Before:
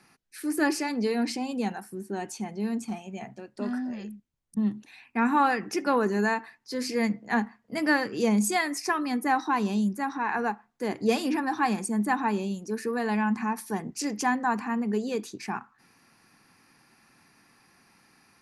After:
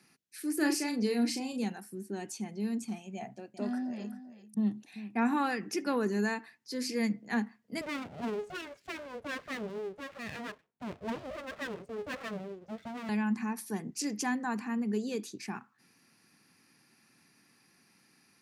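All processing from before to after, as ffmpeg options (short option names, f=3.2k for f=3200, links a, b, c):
-filter_complex "[0:a]asettb=1/sr,asplit=3[a][b][c];[a]atrim=end=0.574[d];[b]atrim=start=0.57:end=1.64,asetpts=PTS-STARTPTS,afade=t=in:d=0.004:c=qsin,afade=t=out:st=1.066:d=0.004:c=qsin,highshelf=f=9.5k:g=4.5,asplit=2[e][f];[f]adelay=38,volume=-6.5dB[g];[e][g]amix=inputs=2:normalize=0,atrim=end_sample=47187[h];[c]atrim=start=1.636[i];[d][h]acrossfade=d=0.004:c1=hsin:c2=qsin[j];[j][i]acrossfade=d=0.004:c1=qsin:c2=hsin,asettb=1/sr,asplit=3[k][l][m];[k]atrim=end=3.154[n];[l]atrim=start=3.15:end=5.34,asetpts=PTS-STARTPTS,afade=t=in:d=0.004:c=qsin,afade=t=out:st=2.186:d=0.004:c=qsin,equalizer=f=720:t=o:w=0.7:g=9.5,aecho=1:1:389:0.211,atrim=end_sample=96579[o];[m]atrim=start=5.336[p];[n][o]acrossfade=d=0.004:c1=hsin:c2=qsin[q];[q][p]acrossfade=d=0.004:c1=qsin:c2=hsin,asettb=1/sr,asplit=3[r][s][t];[r]atrim=end=7.814[u];[s]atrim=start=7.81:end=13.09,asetpts=PTS-STARTPTS,afade=t=in:d=0.004:c=qsin,afade=t=out:st=5.276:d=0.004:c=qsin,lowpass=1.1k,aeval=exprs='abs(val(0))':c=same[v];[t]atrim=start=13.086[w];[u][v]acrossfade=d=0.004:c1=hsin:c2=qsin[x];[x][w]acrossfade=d=0.004:c1=qsin:c2=hsin,highpass=130,equalizer=f=930:w=0.69:g=-8.5,volume=-2dB"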